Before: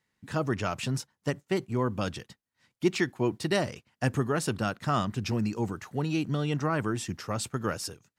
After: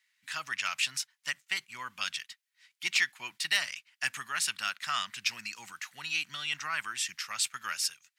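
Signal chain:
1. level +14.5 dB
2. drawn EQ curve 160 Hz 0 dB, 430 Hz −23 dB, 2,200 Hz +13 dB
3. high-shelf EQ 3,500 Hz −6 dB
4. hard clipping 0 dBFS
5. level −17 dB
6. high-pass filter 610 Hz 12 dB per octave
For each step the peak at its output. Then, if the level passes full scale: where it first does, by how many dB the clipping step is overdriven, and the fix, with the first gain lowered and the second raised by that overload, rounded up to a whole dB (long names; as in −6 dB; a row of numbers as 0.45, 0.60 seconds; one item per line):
+2.5, +10.0, +7.0, 0.0, −17.0, −14.5 dBFS
step 1, 7.0 dB
step 1 +7.5 dB, step 5 −10 dB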